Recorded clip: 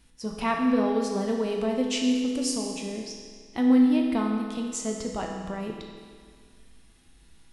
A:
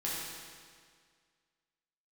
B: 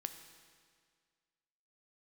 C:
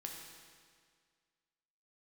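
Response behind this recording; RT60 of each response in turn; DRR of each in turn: C; 1.9, 1.9, 1.9 seconds; −7.5, 7.5, 0.0 decibels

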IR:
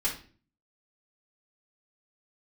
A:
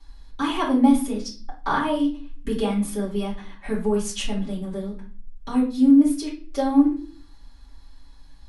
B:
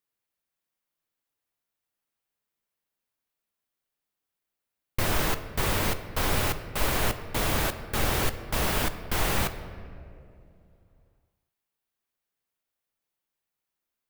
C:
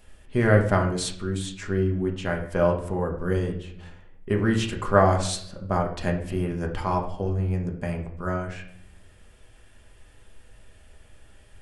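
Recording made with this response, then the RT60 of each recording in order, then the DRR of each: A; 0.40, 2.8, 0.65 seconds; −7.0, 9.5, 1.0 decibels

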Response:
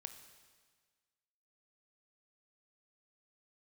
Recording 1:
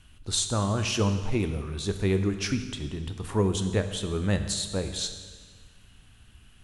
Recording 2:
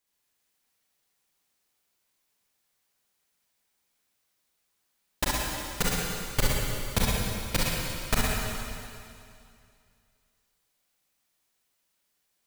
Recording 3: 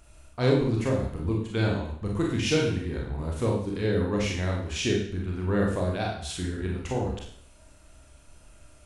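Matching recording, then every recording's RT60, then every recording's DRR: 1; 1.6, 2.4, 0.65 seconds; 7.5, −6.0, −2.0 decibels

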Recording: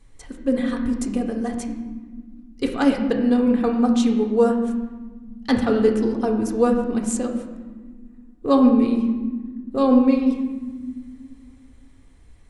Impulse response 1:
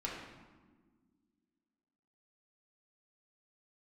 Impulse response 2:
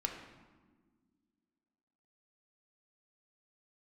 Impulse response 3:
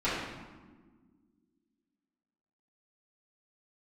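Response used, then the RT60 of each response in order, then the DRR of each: 2; 1.5, 1.5, 1.5 seconds; −5.0, 1.5, −13.5 decibels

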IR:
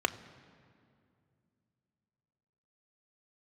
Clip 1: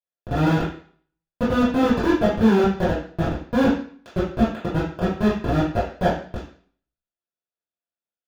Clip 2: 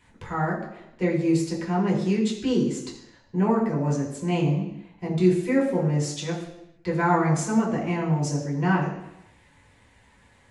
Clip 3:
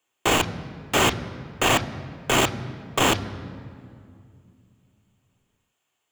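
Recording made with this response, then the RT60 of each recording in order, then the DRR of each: 3; 0.45, 0.85, 2.4 seconds; −10.5, −4.5, 9.0 decibels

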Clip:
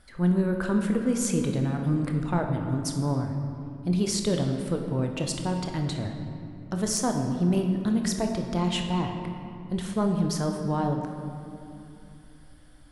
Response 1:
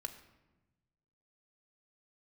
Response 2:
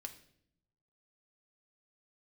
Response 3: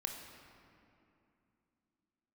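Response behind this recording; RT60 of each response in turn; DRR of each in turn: 3; 1.1, 0.70, 2.7 seconds; 6.0, 5.0, 3.0 decibels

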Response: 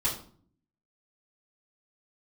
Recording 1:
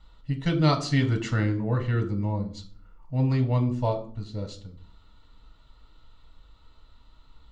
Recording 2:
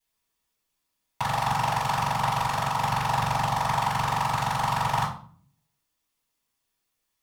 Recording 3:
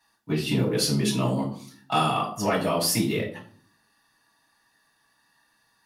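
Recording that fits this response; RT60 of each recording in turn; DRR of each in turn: 2; 0.50, 0.50, 0.50 seconds; 4.5, −9.5, −5.0 decibels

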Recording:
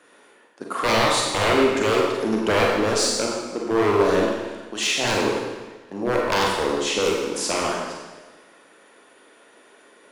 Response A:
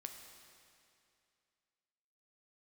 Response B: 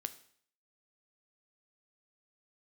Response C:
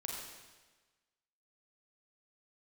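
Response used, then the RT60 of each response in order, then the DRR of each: C; 2.5, 0.60, 1.3 seconds; 4.0, 10.5, −2.0 decibels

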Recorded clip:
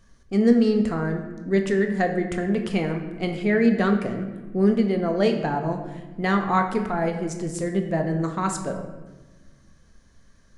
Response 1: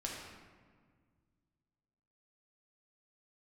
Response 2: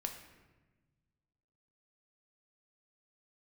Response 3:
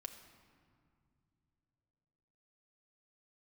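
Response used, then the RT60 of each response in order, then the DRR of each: 2; 1.7 s, 1.2 s, non-exponential decay; −3.0, 3.5, 4.5 decibels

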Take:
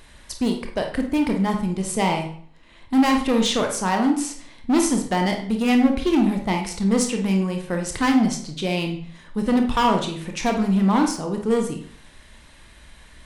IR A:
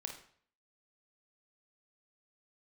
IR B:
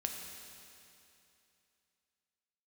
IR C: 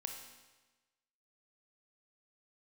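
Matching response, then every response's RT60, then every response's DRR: A; 0.55, 2.8, 1.2 seconds; 3.0, 2.0, 3.5 decibels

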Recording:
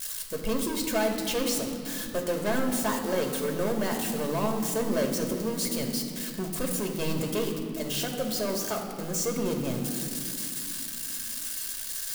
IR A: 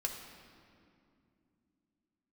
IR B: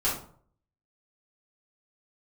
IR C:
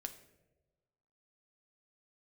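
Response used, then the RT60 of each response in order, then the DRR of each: A; 2.5, 0.55, 1.2 seconds; 1.5, −9.5, 6.0 decibels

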